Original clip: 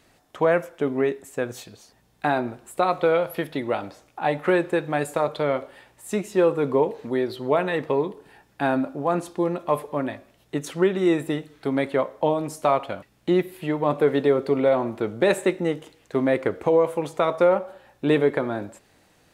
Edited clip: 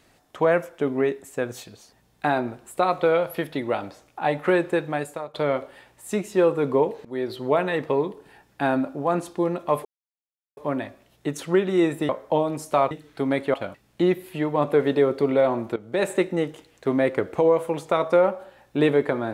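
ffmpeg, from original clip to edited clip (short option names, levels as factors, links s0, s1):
-filter_complex "[0:a]asplit=8[s0][s1][s2][s3][s4][s5][s6][s7];[s0]atrim=end=5.34,asetpts=PTS-STARTPTS,afade=t=out:st=4.82:d=0.52:silence=0.1[s8];[s1]atrim=start=5.34:end=7.05,asetpts=PTS-STARTPTS,afade=t=in:d=0.004:c=hsin:silence=0.1,afade=t=out:st=1.706:d=0.004:c=hsin:silence=0.0794328[s9];[s2]atrim=start=7.05:end=9.85,asetpts=PTS-STARTPTS,afade=t=in:d=0.35:c=qsin:silence=0.0794328,afade=t=out:st=2.796:d=0.004:c=hsin,apad=pad_dur=0.72[s10];[s3]atrim=start=9.85:end=11.372,asetpts=PTS-STARTPTS,afade=t=in:d=0.004:c=hsin[s11];[s4]atrim=start=11.998:end=12.822[s12];[s5]atrim=start=11.368:end=12.002[s13];[s6]atrim=start=12.818:end=15.04,asetpts=PTS-STARTPTS,afade=t=out:st=2.218:d=0.004:c=hsin:silence=0.158489[s14];[s7]atrim=start=15.04,asetpts=PTS-STARTPTS,afade=t=in:d=0.42:silence=0.158489[s15];[s8][s9][s10][s11]concat=n=4:v=0:a=1[s16];[s16][s12]acrossfade=d=0.004:c1=hsin:c2=hsin[s17];[s17][s13]acrossfade=d=0.004:c1=hsin:c2=hsin[s18];[s14][s15]concat=n=2:v=0:a=1[s19];[s18][s19]acrossfade=d=0.004:c1=hsin:c2=hsin"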